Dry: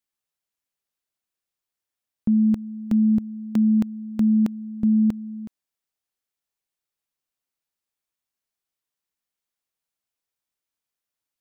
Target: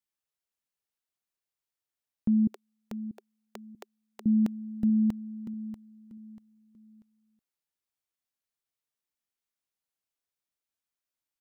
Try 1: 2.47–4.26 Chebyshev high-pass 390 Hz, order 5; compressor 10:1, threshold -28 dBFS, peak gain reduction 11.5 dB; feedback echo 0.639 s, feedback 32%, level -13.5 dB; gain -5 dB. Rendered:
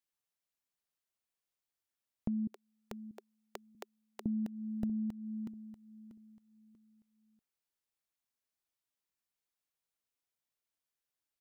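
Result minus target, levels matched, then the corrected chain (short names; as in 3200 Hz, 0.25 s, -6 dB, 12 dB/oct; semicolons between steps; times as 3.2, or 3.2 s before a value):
compressor: peak gain reduction +11.5 dB
2.47–4.26 Chebyshev high-pass 390 Hz, order 5; feedback echo 0.639 s, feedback 32%, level -13.5 dB; gain -5 dB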